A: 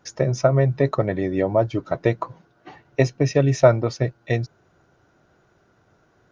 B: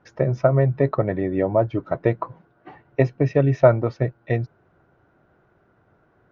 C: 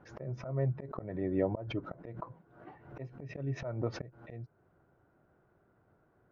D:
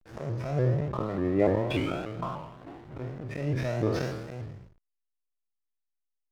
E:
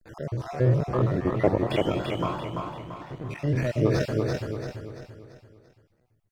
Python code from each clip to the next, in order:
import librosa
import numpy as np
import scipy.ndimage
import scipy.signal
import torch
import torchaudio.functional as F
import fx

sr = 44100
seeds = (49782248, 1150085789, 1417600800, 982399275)

y1 = scipy.signal.sosfilt(scipy.signal.butter(2, 2100.0, 'lowpass', fs=sr, output='sos'), x)
y2 = fx.high_shelf(y1, sr, hz=2100.0, db=-8.5)
y2 = fx.auto_swell(y2, sr, attack_ms=315.0)
y2 = fx.pre_swell(y2, sr, db_per_s=86.0)
y2 = F.gain(torch.from_numpy(y2), -8.0).numpy()
y3 = fx.spec_trails(y2, sr, decay_s=1.28)
y3 = fx.backlash(y3, sr, play_db=-44.5)
y3 = fx.vibrato_shape(y3, sr, shape='saw_up', rate_hz=3.4, depth_cents=160.0)
y3 = F.gain(torch.from_numpy(y3), 5.0).numpy()
y4 = fx.spec_dropout(y3, sr, seeds[0], share_pct=38)
y4 = fx.echo_feedback(y4, sr, ms=339, feedback_pct=43, wet_db=-3.5)
y4 = F.gain(torch.from_numpy(y4), 4.0).numpy()